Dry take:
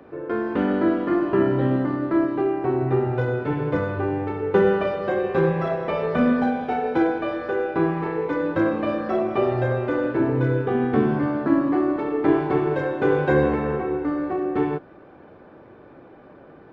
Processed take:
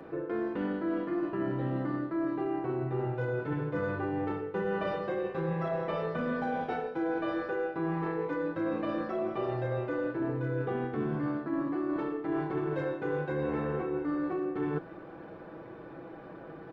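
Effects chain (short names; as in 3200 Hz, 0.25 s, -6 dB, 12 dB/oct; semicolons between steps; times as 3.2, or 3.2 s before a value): comb 6.1 ms, depth 45%; reverse; compressor 10:1, threshold -29 dBFS, peak gain reduction 17.5 dB; reverse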